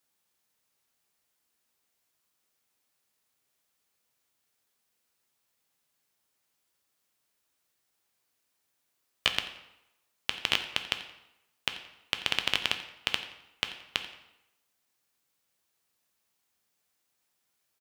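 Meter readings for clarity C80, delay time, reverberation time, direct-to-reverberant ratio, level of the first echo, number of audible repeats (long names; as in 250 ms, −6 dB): 11.5 dB, 87 ms, 0.90 s, 6.5 dB, −16.5 dB, 1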